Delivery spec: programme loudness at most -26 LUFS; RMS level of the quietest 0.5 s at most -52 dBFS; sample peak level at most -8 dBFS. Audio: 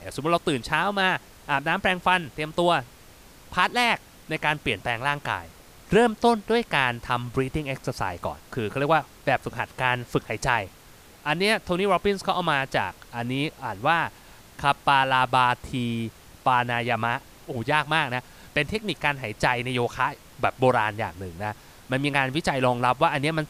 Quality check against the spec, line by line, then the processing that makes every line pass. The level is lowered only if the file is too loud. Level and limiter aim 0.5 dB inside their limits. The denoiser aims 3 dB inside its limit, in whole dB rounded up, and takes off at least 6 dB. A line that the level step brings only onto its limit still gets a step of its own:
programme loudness -25.0 LUFS: fail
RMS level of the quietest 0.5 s -50 dBFS: fail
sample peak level -5.5 dBFS: fail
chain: denoiser 6 dB, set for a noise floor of -50 dBFS; gain -1.5 dB; limiter -8.5 dBFS

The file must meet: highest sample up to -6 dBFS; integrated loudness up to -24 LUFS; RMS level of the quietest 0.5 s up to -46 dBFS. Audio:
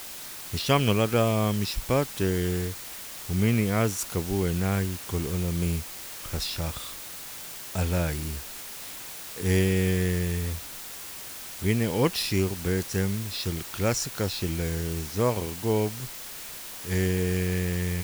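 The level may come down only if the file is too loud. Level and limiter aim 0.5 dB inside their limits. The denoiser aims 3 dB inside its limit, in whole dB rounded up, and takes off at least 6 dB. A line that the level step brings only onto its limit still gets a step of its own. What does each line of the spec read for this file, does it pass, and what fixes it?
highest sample -7.5 dBFS: OK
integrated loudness -28.0 LUFS: OK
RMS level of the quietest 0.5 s -40 dBFS: fail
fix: denoiser 9 dB, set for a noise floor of -40 dBFS

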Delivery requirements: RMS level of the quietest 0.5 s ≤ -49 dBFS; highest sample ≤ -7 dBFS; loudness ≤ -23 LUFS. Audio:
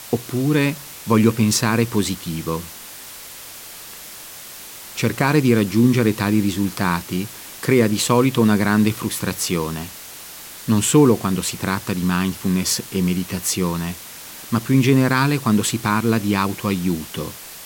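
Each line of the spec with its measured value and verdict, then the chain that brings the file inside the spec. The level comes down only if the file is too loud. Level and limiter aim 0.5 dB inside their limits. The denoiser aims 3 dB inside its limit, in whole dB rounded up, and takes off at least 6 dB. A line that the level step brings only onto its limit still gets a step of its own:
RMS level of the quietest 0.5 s -37 dBFS: fail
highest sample -3.0 dBFS: fail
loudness -19.5 LUFS: fail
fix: denoiser 11 dB, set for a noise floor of -37 dBFS; gain -4 dB; limiter -7.5 dBFS

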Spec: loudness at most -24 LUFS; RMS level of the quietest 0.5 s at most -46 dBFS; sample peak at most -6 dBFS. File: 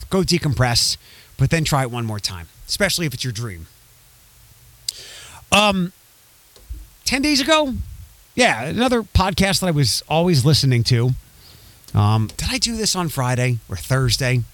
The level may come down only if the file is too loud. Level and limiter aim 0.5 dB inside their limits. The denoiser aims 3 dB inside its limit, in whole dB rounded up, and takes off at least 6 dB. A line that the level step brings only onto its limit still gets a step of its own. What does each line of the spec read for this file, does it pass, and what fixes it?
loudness -19.0 LUFS: fail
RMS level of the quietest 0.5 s -51 dBFS: OK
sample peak -3.5 dBFS: fail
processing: gain -5.5 dB

